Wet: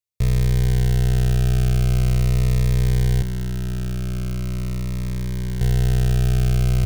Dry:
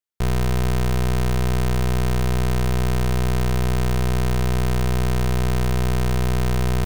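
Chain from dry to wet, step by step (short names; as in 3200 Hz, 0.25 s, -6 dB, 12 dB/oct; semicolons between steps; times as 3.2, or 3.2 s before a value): fifteen-band EQ 100 Hz +12 dB, 250 Hz -8 dB, 1000 Hz -10 dB; 3.22–5.61 overloaded stage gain 22.5 dB; cascading phaser falling 0.42 Hz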